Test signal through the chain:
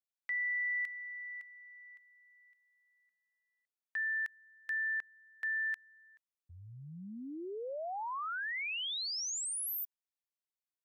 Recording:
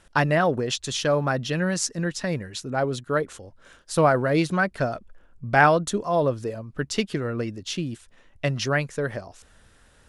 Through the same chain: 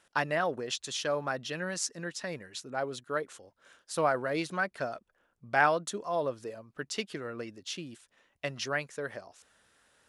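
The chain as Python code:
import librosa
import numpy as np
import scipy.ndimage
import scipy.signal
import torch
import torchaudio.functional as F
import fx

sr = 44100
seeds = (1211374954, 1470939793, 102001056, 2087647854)

y = fx.highpass(x, sr, hz=460.0, slope=6)
y = F.gain(torch.from_numpy(y), -6.5).numpy()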